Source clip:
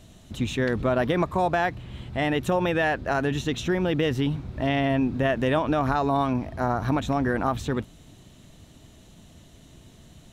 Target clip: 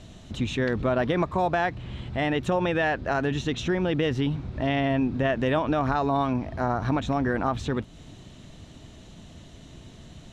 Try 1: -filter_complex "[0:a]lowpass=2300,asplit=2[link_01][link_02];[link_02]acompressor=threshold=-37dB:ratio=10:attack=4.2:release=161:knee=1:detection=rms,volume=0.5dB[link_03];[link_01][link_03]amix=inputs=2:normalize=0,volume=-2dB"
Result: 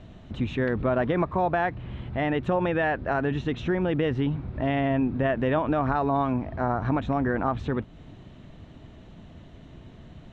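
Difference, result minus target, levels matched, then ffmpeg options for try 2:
8,000 Hz band −15.5 dB
-filter_complex "[0:a]lowpass=6500,asplit=2[link_01][link_02];[link_02]acompressor=threshold=-37dB:ratio=10:attack=4.2:release=161:knee=1:detection=rms,volume=0.5dB[link_03];[link_01][link_03]amix=inputs=2:normalize=0,volume=-2dB"

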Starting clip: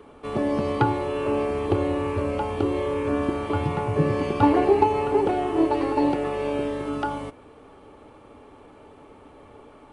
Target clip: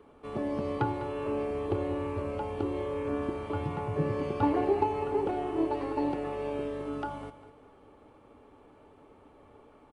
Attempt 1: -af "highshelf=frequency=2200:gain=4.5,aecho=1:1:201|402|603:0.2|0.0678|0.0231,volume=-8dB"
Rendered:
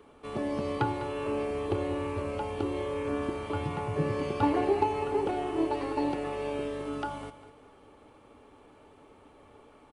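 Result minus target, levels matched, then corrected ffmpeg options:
4,000 Hz band +5.5 dB
-af "highshelf=frequency=2200:gain=-4,aecho=1:1:201|402|603:0.2|0.0678|0.0231,volume=-8dB"

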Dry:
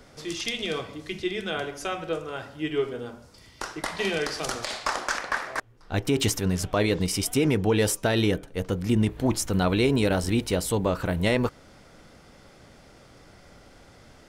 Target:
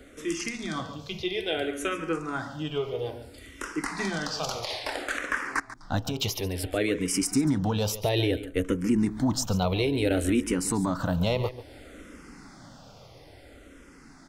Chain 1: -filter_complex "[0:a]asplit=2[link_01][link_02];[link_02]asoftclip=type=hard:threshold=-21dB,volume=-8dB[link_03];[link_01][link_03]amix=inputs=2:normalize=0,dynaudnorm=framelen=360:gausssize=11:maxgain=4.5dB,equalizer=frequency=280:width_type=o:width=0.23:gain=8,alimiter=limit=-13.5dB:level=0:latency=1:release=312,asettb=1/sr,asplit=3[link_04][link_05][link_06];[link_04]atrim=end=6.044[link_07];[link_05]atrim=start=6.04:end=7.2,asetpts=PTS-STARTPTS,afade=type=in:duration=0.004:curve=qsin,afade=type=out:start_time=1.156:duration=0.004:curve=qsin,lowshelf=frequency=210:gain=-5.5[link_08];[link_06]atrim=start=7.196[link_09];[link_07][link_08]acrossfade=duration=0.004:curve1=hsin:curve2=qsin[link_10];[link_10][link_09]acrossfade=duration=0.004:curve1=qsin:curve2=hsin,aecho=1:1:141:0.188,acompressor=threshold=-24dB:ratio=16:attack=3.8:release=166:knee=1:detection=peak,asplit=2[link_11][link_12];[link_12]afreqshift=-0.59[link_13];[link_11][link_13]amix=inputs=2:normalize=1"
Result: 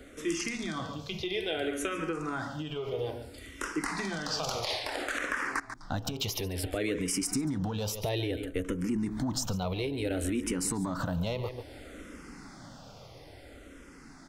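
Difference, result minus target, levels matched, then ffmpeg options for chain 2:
hard clipping: distortion +29 dB; downward compressor: peak gain reduction +9.5 dB
-filter_complex "[0:a]asplit=2[link_01][link_02];[link_02]asoftclip=type=hard:threshold=-13.5dB,volume=-8dB[link_03];[link_01][link_03]amix=inputs=2:normalize=0,dynaudnorm=framelen=360:gausssize=11:maxgain=4.5dB,equalizer=frequency=280:width_type=o:width=0.23:gain=8,alimiter=limit=-13.5dB:level=0:latency=1:release=312,asettb=1/sr,asplit=3[link_04][link_05][link_06];[link_04]atrim=end=6.044[link_07];[link_05]atrim=start=6.04:end=7.2,asetpts=PTS-STARTPTS,afade=type=in:duration=0.004:curve=qsin,afade=type=out:start_time=1.156:duration=0.004:curve=qsin,lowshelf=frequency=210:gain=-5.5[link_08];[link_06]atrim=start=7.196[link_09];[link_07][link_08]acrossfade=duration=0.004:curve1=hsin:curve2=qsin[link_10];[link_10][link_09]acrossfade=duration=0.004:curve1=qsin:curve2=hsin,aecho=1:1:141:0.188,asplit=2[link_11][link_12];[link_12]afreqshift=-0.59[link_13];[link_11][link_13]amix=inputs=2:normalize=1"

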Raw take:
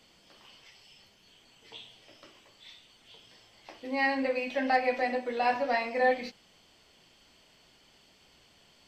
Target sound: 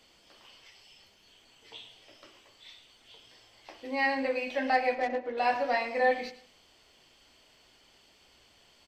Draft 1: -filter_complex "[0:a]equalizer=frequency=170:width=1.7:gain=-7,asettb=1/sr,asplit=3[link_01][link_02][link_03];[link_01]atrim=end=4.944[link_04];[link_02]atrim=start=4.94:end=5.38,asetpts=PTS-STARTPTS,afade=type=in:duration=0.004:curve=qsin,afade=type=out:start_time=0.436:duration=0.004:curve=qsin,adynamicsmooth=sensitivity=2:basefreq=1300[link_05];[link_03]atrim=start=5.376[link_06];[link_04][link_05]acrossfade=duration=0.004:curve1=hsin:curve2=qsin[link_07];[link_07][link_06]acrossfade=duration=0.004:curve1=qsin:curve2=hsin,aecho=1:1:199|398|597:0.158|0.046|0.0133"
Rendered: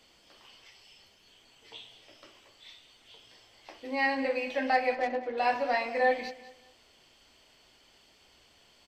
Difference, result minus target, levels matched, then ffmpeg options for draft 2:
echo 90 ms late
-filter_complex "[0:a]equalizer=frequency=170:width=1.7:gain=-7,asettb=1/sr,asplit=3[link_01][link_02][link_03];[link_01]atrim=end=4.944[link_04];[link_02]atrim=start=4.94:end=5.38,asetpts=PTS-STARTPTS,afade=type=in:duration=0.004:curve=qsin,afade=type=out:start_time=0.436:duration=0.004:curve=qsin,adynamicsmooth=sensitivity=2:basefreq=1300[link_05];[link_03]atrim=start=5.376[link_06];[link_04][link_05]acrossfade=duration=0.004:curve1=hsin:curve2=qsin[link_07];[link_07][link_06]acrossfade=duration=0.004:curve1=qsin:curve2=hsin,aecho=1:1:109|218|327:0.158|0.046|0.0133"

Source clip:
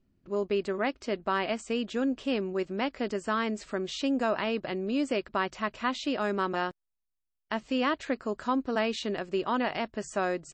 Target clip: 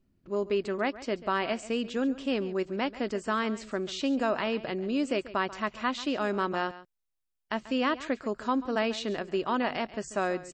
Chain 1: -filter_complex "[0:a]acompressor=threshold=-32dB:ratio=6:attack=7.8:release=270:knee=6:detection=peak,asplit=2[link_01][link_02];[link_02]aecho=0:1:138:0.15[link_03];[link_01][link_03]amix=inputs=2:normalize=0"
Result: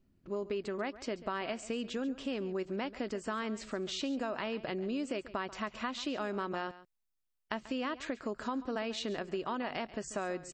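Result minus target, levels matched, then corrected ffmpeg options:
downward compressor: peak gain reduction +10 dB
-filter_complex "[0:a]asplit=2[link_01][link_02];[link_02]aecho=0:1:138:0.15[link_03];[link_01][link_03]amix=inputs=2:normalize=0"

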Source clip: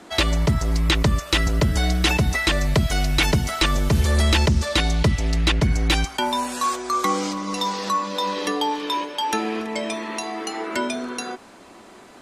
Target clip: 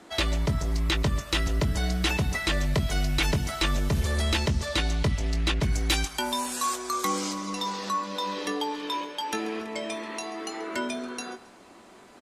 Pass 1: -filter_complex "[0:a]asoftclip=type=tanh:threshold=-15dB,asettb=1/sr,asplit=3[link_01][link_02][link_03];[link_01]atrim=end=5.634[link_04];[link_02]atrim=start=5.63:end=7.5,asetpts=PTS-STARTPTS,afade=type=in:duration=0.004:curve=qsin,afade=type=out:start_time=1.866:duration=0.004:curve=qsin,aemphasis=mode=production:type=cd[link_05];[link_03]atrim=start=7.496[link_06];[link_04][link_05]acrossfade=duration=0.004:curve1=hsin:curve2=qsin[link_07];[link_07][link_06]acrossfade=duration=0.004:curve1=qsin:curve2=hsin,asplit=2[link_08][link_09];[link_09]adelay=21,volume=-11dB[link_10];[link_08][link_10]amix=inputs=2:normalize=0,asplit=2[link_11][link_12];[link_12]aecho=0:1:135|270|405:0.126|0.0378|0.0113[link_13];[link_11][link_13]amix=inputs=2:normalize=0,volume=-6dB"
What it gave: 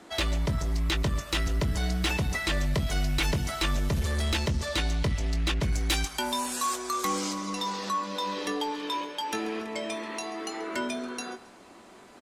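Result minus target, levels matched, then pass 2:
soft clipping: distortion +11 dB
-filter_complex "[0:a]asoftclip=type=tanh:threshold=-7.5dB,asettb=1/sr,asplit=3[link_01][link_02][link_03];[link_01]atrim=end=5.634[link_04];[link_02]atrim=start=5.63:end=7.5,asetpts=PTS-STARTPTS,afade=type=in:duration=0.004:curve=qsin,afade=type=out:start_time=1.866:duration=0.004:curve=qsin,aemphasis=mode=production:type=cd[link_05];[link_03]atrim=start=7.496[link_06];[link_04][link_05]acrossfade=duration=0.004:curve1=hsin:curve2=qsin[link_07];[link_07][link_06]acrossfade=duration=0.004:curve1=qsin:curve2=hsin,asplit=2[link_08][link_09];[link_09]adelay=21,volume=-11dB[link_10];[link_08][link_10]amix=inputs=2:normalize=0,asplit=2[link_11][link_12];[link_12]aecho=0:1:135|270|405:0.126|0.0378|0.0113[link_13];[link_11][link_13]amix=inputs=2:normalize=0,volume=-6dB"

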